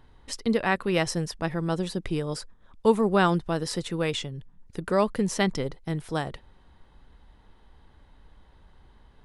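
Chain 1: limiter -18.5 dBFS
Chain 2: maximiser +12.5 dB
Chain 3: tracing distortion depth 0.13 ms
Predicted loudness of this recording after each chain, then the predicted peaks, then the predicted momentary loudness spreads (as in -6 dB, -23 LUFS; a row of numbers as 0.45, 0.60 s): -31.0, -16.0, -27.0 LUFS; -18.5, -1.0, -8.0 dBFS; 10, 12, 14 LU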